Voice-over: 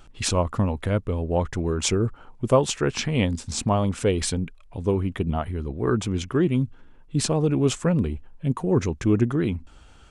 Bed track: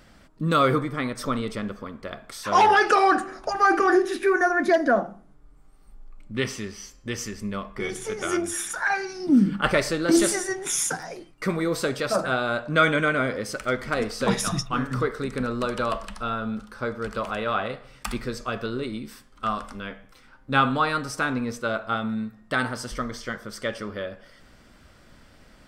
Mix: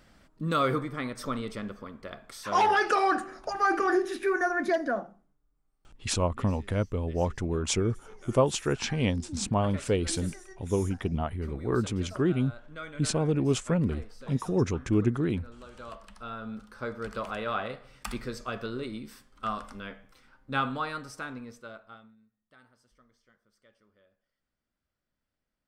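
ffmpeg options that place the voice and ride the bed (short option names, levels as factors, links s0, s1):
-filter_complex "[0:a]adelay=5850,volume=0.596[s0];[1:a]volume=3.35,afade=t=out:st=4.65:d=0.74:silence=0.158489,afade=t=in:st=15.71:d=1.27:silence=0.149624,afade=t=out:st=19.96:d=2.2:silence=0.0375837[s1];[s0][s1]amix=inputs=2:normalize=0"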